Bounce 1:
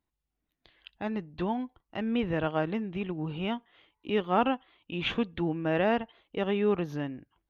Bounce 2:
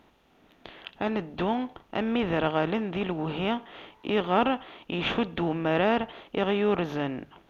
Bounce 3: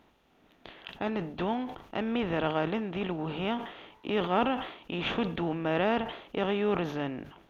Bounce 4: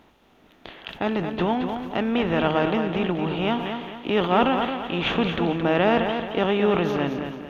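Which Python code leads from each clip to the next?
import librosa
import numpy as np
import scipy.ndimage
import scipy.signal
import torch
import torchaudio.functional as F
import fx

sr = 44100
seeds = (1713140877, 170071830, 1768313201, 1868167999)

y1 = fx.bin_compress(x, sr, power=0.6)
y1 = fx.hum_notches(y1, sr, base_hz=50, count=3)
y2 = fx.sustainer(y1, sr, db_per_s=89.0)
y2 = y2 * 10.0 ** (-3.5 / 20.0)
y3 = fx.echo_feedback(y2, sr, ms=221, feedback_pct=38, wet_db=-7)
y3 = y3 * 10.0 ** (7.0 / 20.0)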